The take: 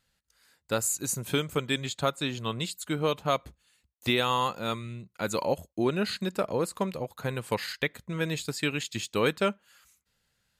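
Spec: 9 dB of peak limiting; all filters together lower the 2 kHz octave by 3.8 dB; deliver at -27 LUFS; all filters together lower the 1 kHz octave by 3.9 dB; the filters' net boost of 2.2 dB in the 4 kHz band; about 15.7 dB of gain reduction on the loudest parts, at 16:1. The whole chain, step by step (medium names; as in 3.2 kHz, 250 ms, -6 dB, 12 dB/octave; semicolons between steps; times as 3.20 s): peaking EQ 1 kHz -3.5 dB; peaking EQ 2 kHz -5.5 dB; peaking EQ 4 kHz +4.5 dB; compression 16:1, threshold -38 dBFS; trim +17.5 dB; peak limiter -16 dBFS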